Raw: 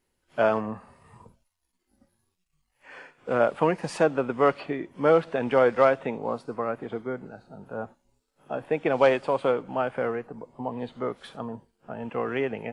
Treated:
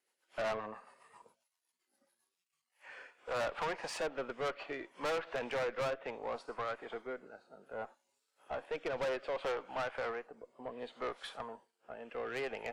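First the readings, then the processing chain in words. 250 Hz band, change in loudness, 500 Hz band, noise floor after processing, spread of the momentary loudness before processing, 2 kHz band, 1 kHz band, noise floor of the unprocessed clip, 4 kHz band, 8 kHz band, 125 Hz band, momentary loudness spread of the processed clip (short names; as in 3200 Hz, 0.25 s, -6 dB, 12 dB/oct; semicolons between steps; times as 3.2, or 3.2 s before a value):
-18.5 dB, -13.5 dB, -14.0 dB, under -85 dBFS, 16 LU, -8.5 dB, -12.0 dB, -77 dBFS, -3.5 dB, n/a, -17.5 dB, 14 LU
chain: HPF 640 Hz 12 dB/oct; treble ducked by the level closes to 2300 Hz, closed at -21.5 dBFS; rotary speaker horn 7.5 Hz, later 0.65 Hz, at 2.19; tube stage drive 33 dB, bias 0.35; gain +1 dB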